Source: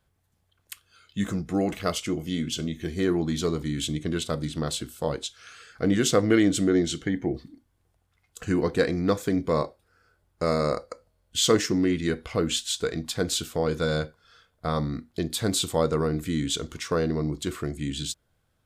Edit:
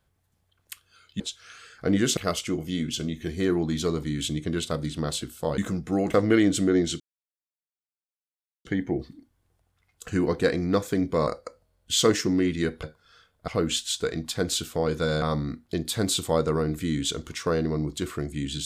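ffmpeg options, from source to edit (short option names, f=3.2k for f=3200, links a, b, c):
-filter_complex "[0:a]asplit=10[a][b][c][d][e][f][g][h][i][j];[a]atrim=end=1.202[k];[b]atrim=start=5.168:end=6.142[l];[c]atrim=start=1.758:end=5.172[m];[d]atrim=start=1.198:end=1.762[n];[e]atrim=start=6.138:end=7,asetpts=PTS-STARTPTS,afade=t=out:st=0.858:d=0.004:c=hsin,apad=pad_dur=1.65[o];[f]atrim=start=7:end=9.622,asetpts=PTS-STARTPTS,afade=t=in:d=0.004:c=hsin[p];[g]atrim=start=10.718:end=12.282[q];[h]atrim=start=14.018:end=14.672[r];[i]atrim=start=12.278:end=14.022[s];[j]atrim=start=14.668[t];[k][l]acrossfade=d=0.004:c1=hsin:c2=hsin[u];[u][m]acrossfade=d=0.004:c1=hsin:c2=hsin[v];[v][n]acrossfade=d=0.004:c1=hsin:c2=hsin[w];[o][p]concat=n=2:v=0:a=1[x];[w][x]acrossfade=d=0.004:c1=hsin:c2=hsin[y];[y][q]acrossfade=d=0.004:c1=hsin:c2=hsin[z];[z][r]acrossfade=d=0.004:c1=hsin:c2=hsin[aa];[aa][s]acrossfade=d=0.004:c1=hsin:c2=hsin[ab];[ab][t]acrossfade=d=0.004:c1=hsin:c2=hsin"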